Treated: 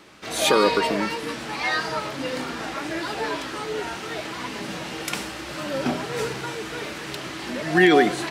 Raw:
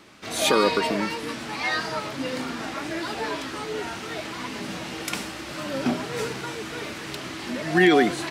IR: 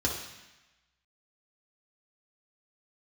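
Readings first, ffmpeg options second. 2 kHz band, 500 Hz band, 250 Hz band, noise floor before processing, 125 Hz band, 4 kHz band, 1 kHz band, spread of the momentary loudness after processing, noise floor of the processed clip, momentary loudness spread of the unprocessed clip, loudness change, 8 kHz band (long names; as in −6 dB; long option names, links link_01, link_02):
+1.5 dB, +2.0 dB, +0.5 dB, −36 dBFS, +0.5 dB, +1.0 dB, +2.0 dB, 13 LU, −35 dBFS, 13 LU, +1.5 dB, +1.0 dB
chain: -filter_complex "[0:a]asplit=2[link_01][link_02];[link_02]lowpass=3100[link_03];[1:a]atrim=start_sample=2205[link_04];[link_03][link_04]afir=irnorm=-1:irlink=0,volume=-22dB[link_05];[link_01][link_05]amix=inputs=2:normalize=0,volume=1dB"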